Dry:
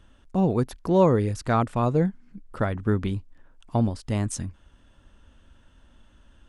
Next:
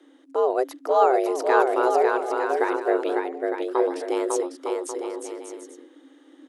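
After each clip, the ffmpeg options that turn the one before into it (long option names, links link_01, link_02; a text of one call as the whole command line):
ffmpeg -i in.wav -filter_complex "[0:a]asplit=2[link_01][link_02];[link_02]aecho=0:1:550|907.5|1140|1291|1389:0.631|0.398|0.251|0.158|0.1[link_03];[link_01][link_03]amix=inputs=2:normalize=0,afreqshift=260" out.wav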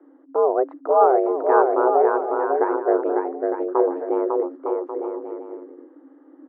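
ffmpeg -i in.wav -af "lowpass=frequency=1300:width=0.5412,lowpass=frequency=1300:width=1.3066,volume=3dB" out.wav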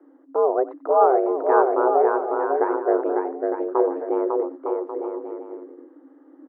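ffmpeg -i in.wav -af "aecho=1:1:91:0.119,volume=-1dB" out.wav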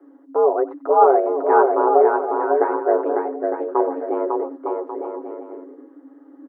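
ffmpeg -i in.wav -af "aecho=1:1:7.2:0.72,volume=1dB" out.wav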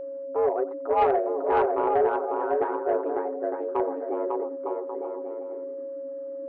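ffmpeg -i in.wav -af "asoftclip=type=tanh:threshold=-7dB,aeval=exprs='val(0)+0.0501*sin(2*PI*550*n/s)':channel_layout=same,volume=-6.5dB" out.wav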